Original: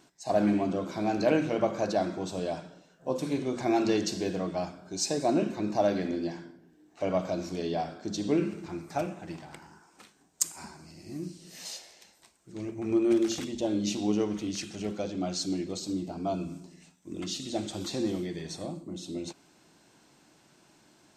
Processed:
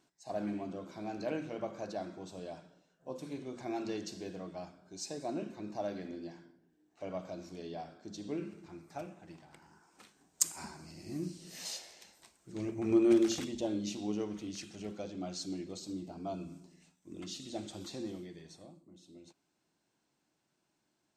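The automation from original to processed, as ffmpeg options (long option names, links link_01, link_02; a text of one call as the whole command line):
ffmpeg -i in.wav -af "volume=-1dB,afade=type=in:start_time=9.51:duration=0.98:silence=0.281838,afade=type=out:start_time=13.14:duration=0.77:silence=0.421697,afade=type=out:start_time=17.69:duration=1.11:silence=0.298538" out.wav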